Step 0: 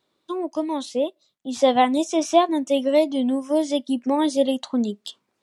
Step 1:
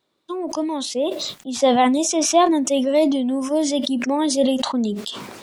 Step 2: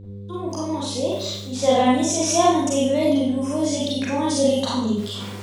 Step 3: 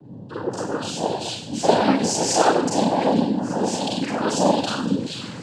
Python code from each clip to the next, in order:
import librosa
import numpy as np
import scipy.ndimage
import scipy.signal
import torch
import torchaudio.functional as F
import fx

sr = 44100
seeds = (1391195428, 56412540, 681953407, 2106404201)

y1 = fx.sustainer(x, sr, db_per_s=36.0)
y2 = fx.dmg_buzz(y1, sr, base_hz=100.0, harmonics=5, level_db=-33.0, tilt_db=-8, odd_only=False)
y2 = fx.rev_schroeder(y2, sr, rt60_s=0.61, comb_ms=32, drr_db=-5.5)
y2 = y2 * 10.0 ** (-7.5 / 20.0)
y3 = fx.noise_vocoder(y2, sr, seeds[0], bands=8)